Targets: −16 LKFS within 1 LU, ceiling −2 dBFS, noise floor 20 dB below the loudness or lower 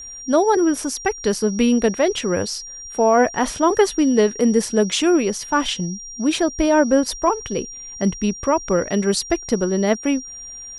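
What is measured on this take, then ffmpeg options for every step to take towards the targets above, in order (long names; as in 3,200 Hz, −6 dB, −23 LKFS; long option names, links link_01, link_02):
interfering tone 5,700 Hz; level of the tone −33 dBFS; integrated loudness −19.5 LKFS; sample peak −3.5 dBFS; target loudness −16.0 LKFS
→ -af "bandreject=frequency=5700:width=30"
-af "volume=3.5dB,alimiter=limit=-2dB:level=0:latency=1"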